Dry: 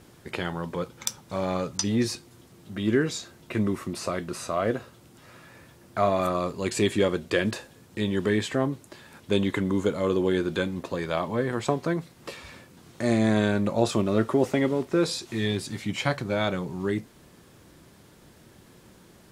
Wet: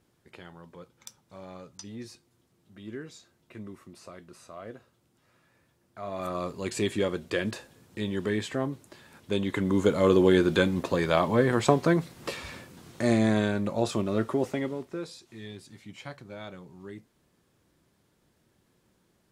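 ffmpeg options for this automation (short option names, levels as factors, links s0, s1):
-af "volume=1.58,afade=t=in:st=6.02:d=0.4:silence=0.251189,afade=t=in:st=9.45:d=0.61:silence=0.375837,afade=t=out:st=12.39:d=1.15:silence=0.398107,afade=t=out:st=14.3:d=0.8:silence=0.266073"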